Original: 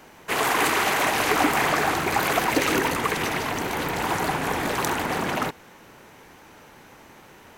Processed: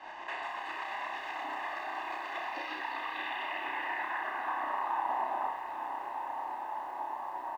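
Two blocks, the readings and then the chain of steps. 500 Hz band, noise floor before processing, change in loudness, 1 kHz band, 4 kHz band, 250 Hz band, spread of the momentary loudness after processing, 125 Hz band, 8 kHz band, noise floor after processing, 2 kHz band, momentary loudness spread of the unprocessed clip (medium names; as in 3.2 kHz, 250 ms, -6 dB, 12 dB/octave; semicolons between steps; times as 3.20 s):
-17.0 dB, -50 dBFS, -13.0 dB, -8.0 dB, -16.5 dB, -23.0 dB, 6 LU, under -35 dB, under -30 dB, -42 dBFS, -12.5 dB, 6 LU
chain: inverse Chebyshev high-pass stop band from 170 Hz, stop band 40 dB; bass shelf 460 Hz -5 dB; comb 1.1 ms, depth 93%; in parallel at 0 dB: gain riding; on the sum: peak limiter -8 dBFS, peak gain reduction 7.5 dB; compression 16:1, threshold -31 dBFS, peak gain reduction 18 dB; low-pass sweep 7.5 kHz -> 920 Hz, 2.19–5.02 s; crackle 260 per s -41 dBFS; tremolo saw up 8.4 Hz, depth 55%; distance through air 390 m; on a send: flutter echo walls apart 5.5 m, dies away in 0.51 s; on the sum: bit-crushed delay 424 ms, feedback 80%, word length 10-bit, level -11 dB; trim -1.5 dB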